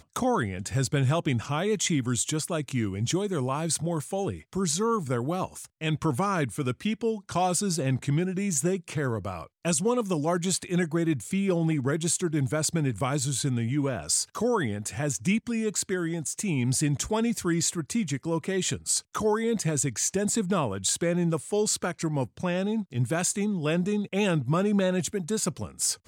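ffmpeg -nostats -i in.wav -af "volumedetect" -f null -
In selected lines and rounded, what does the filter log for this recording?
mean_volume: -27.4 dB
max_volume: -13.1 dB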